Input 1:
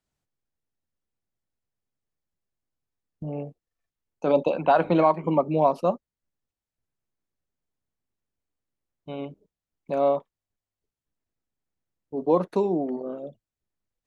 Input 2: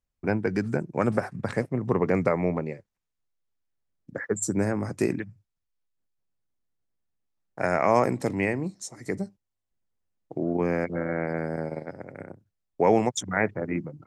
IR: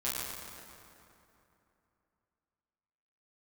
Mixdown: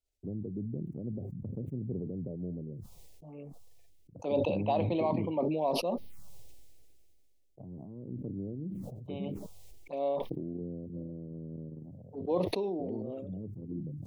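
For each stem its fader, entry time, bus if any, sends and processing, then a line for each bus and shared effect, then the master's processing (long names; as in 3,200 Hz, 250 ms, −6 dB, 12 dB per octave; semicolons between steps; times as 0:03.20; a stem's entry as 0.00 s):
−6.0 dB, 0.00 s, no send, high-pass filter 400 Hz 6 dB per octave
−4.0 dB, 0.00 s, no send, downward compressor 3 to 1, threshold −27 dBFS, peak gain reduction 9.5 dB; Gaussian smoothing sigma 21 samples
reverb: not used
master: parametric band 1,600 Hz −10 dB 0.42 octaves; phaser swept by the level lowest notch 180 Hz, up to 1,400 Hz, full sweep at −35 dBFS; level that may fall only so fast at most 24 dB per second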